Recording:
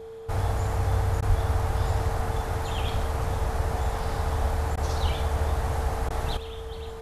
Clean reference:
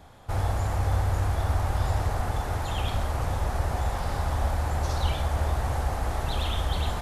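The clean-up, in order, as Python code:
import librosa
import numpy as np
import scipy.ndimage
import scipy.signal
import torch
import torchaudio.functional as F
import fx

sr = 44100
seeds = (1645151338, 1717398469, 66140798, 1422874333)

y = fx.notch(x, sr, hz=450.0, q=30.0)
y = fx.fix_deplosive(y, sr, at_s=(1.28,))
y = fx.fix_interpolate(y, sr, at_s=(1.21, 4.76, 6.09), length_ms=12.0)
y = fx.gain(y, sr, db=fx.steps((0.0, 0.0), (6.37, 11.0)))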